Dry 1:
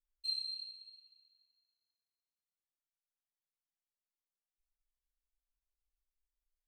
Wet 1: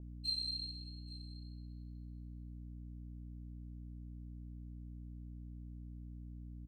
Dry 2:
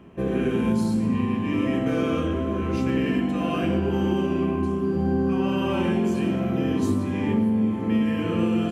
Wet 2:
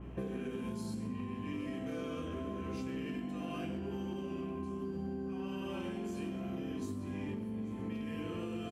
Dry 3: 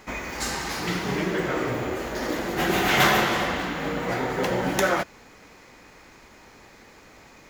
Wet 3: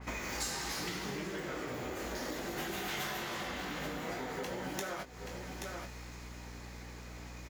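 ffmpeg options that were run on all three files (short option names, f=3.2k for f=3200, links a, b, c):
-filter_complex "[0:a]asoftclip=type=hard:threshold=-14.5dB,asplit=2[a][b];[b]adelay=20,volume=-7.5dB[c];[a][c]amix=inputs=2:normalize=0,asplit=2[d][e];[e]aecho=0:1:829:0.112[f];[d][f]amix=inputs=2:normalize=0,aeval=exprs='val(0)+0.00631*(sin(2*PI*60*n/s)+sin(2*PI*2*60*n/s)/2+sin(2*PI*3*60*n/s)/3+sin(2*PI*4*60*n/s)/4+sin(2*PI*5*60*n/s)/5)':c=same,acompressor=threshold=-33dB:ratio=16,adynamicequalizer=threshold=0.00178:dfrequency=3400:dqfactor=0.7:tfrequency=3400:tqfactor=0.7:attack=5:release=100:ratio=0.375:range=3:mode=boostabove:tftype=highshelf,volume=-3dB"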